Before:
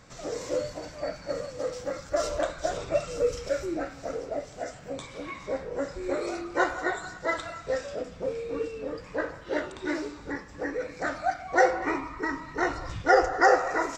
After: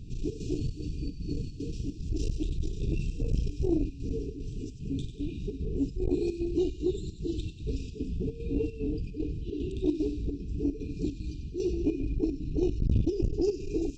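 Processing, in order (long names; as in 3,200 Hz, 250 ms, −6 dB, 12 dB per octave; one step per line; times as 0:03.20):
RIAA equalisation playback
in parallel at −2 dB: brickwall limiter −16 dBFS, peak gain reduction 9.5 dB
on the sum: square-wave tremolo 2.5 Hz, depth 65%, duty 75%
linear-phase brick-wall band-stop 450–2,400 Hz
on a send: delay with a high-pass on its return 95 ms, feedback 54%, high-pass 2,500 Hz, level −9 dB
on the sum: saturating transformer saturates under 160 Hz
level −3 dB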